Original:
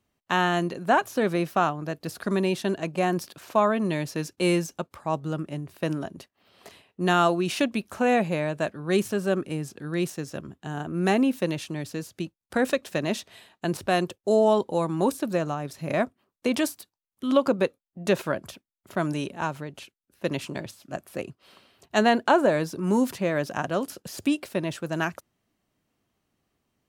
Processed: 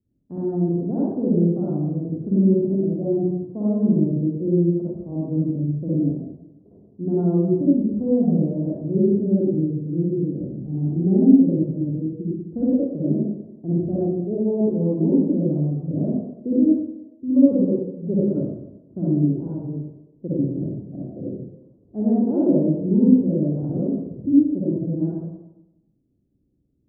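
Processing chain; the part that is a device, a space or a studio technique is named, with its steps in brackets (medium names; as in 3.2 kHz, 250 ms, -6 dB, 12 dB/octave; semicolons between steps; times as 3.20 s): next room (low-pass 370 Hz 24 dB/octave; reverberation RT60 0.95 s, pre-delay 47 ms, DRR -8.5 dB)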